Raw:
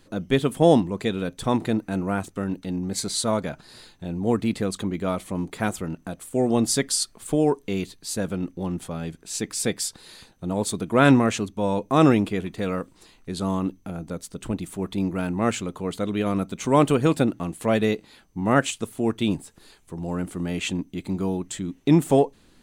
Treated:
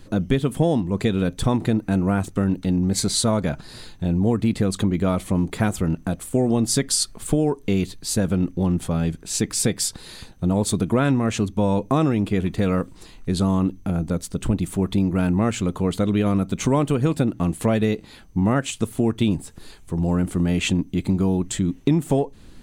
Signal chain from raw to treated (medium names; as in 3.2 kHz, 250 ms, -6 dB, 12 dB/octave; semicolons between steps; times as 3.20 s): bass shelf 170 Hz +11 dB; compression 6:1, threshold -21 dBFS, peak gain reduction 13.5 dB; trim +5 dB